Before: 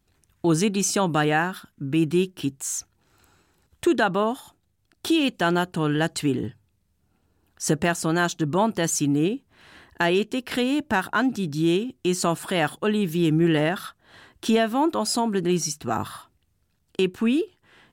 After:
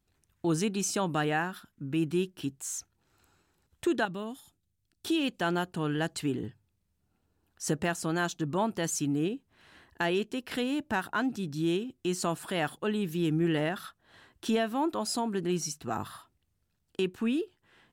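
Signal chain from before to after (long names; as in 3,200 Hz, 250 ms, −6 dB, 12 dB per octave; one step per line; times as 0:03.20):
0:04.05–0:05.06: parametric band 890 Hz −12 dB 2.6 octaves
level −7.5 dB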